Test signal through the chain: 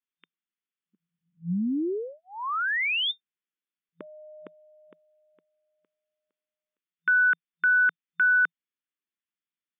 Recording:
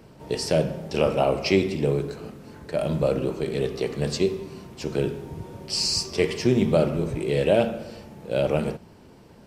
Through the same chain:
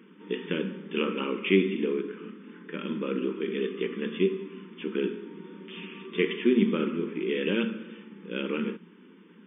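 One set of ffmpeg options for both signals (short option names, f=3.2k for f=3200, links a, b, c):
-af "afftfilt=real='re*between(b*sr/4096,170,3600)':imag='im*between(b*sr/4096,170,3600)':win_size=4096:overlap=0.75,asuperstop=centerf=680:order=4:qfactor=0.94"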